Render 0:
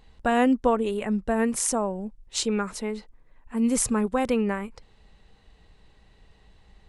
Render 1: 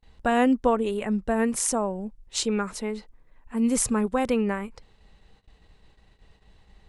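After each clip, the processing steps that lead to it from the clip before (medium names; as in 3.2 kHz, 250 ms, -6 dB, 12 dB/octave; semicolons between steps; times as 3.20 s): gate -55 dBFS, range -27 dB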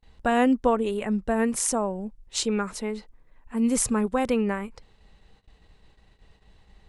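no audible change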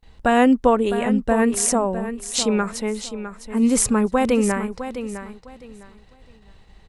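feedback delay 657 ms, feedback 23%, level -11 dB; trim +5.5 dB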